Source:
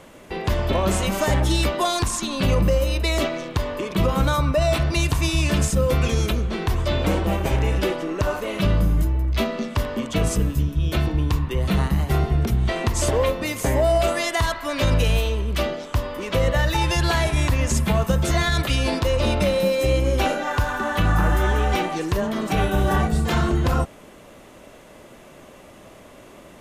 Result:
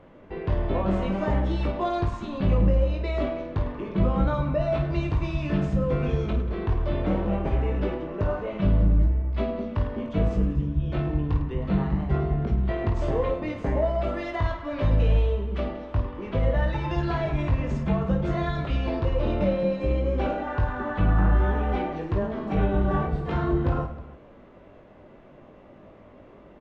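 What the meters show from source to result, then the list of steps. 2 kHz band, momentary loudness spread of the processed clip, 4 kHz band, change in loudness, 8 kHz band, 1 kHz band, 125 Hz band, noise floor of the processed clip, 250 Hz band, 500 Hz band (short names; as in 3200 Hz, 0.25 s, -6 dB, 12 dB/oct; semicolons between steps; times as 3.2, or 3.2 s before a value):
-10.0 dB, 6 LU, -16.5 dB, -4.0 dB, under -30 dB, -6.0 dB, -3.5 dB, -50 dBFS, -2.5 dB, -4.5 dB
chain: tape spacing loss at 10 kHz 42 dB; on a send: reverse bouncing-ball echo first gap 20 ms, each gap 1.6×, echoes 5; on the sum: gain -4 dB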